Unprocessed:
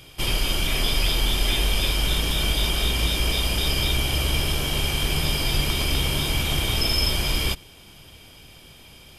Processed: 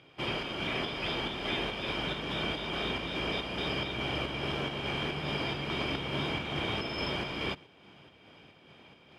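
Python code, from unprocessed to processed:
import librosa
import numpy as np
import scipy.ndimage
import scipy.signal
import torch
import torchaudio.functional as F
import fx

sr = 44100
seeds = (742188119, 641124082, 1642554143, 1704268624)

p1 = fx.bandpass_edges(x, sr, low_hz=170.0, high_hz=2200.0)
p2 = fx.volume_shaper(p1, sr, bpm=141, per_beat=1, depth_db=-12, release_ms=174.0, shape='slow start')
p3 = p1 + (p2 * librosa.db_to_amplitude(0.5))
y = p3 * librosa.db_to_amplitude(-8.5)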